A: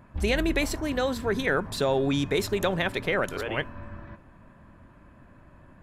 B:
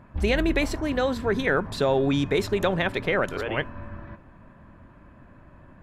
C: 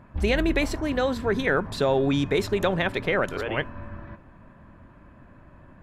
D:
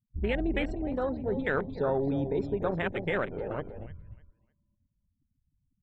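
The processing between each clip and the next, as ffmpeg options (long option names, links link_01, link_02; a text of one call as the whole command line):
ffmpeg -i in.wav -af "highshelf=frequency=5900:gain=-10.5,volume=2.5dB" out.wav
ffmpeg -i in.wav -af anull out.wav
ffmpeg -i in.wav -filter_complex "[0:a]afftfilt=real='re*gte(hypot(re,im),0.0224)':imag='im*gte(hypot(re,im),0.0224)':win_size=1024:overlap=0.75,asplit=2[link_01][link_02];[link_02]adelay=303,lowpass=frequency=4200:poles=1,volume=-8dB,asplit=2[link_03][link_04];[link_04]adelay=303,lowpass=frequency=4200:poles=1,volume=0.27,asplit=2[link_05][link_06];[link_06]adelay=303,lowpass=frequency=4200:poles=1,volume=0.27[link_07];[link_01][link_03][link_05][link_07]amix=inputs=4:normalize=0,afwtdn=0.0501,volume=-6dB" out.wav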